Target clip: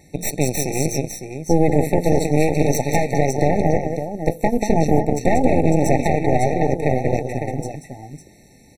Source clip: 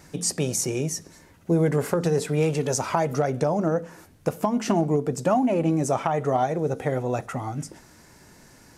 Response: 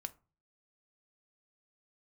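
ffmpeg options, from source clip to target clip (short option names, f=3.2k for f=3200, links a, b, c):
-af "aecho=1:1:186|554:0.531|0.447,aeval=exprs='0.531*(cos(1*acos(clip(val(0)/0.531,-1,1)))-cos(1*PI/2))+0.188*(cos(6*acos(clip(val(0)/0.531,-1,1)))-cos(6*PI/2))':c=same,afftfilt=real='re*eq(mod(floor(b*sr/1024/900),2),0)':imag='im*eq(mod(floor(b*sr/1024/900),2),0)':win_size=1024:overlap=0.75,volume=1dB"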